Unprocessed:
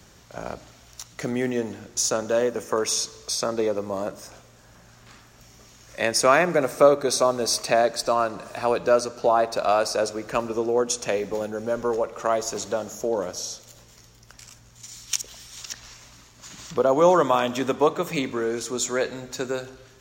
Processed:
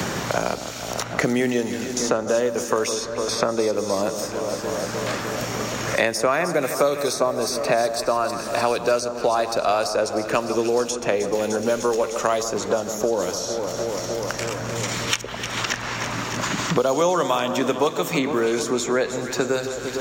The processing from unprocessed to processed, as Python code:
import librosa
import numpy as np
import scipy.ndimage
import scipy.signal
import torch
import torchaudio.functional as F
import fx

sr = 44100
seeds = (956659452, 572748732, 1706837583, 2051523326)

y = fx.high_shelf(x, sr, hz=11000.0, db=8.0, at=(6.07, 8.36))
y = fx.echo_alternate(y, sr, ms=151, hz=1400.0, feedback_pct=76, wet_db=-12)
y = fx.band_squash(y, sr, depth_pct=100)
y = F.gain(torch.from_numpy(y), 1.5).numpy()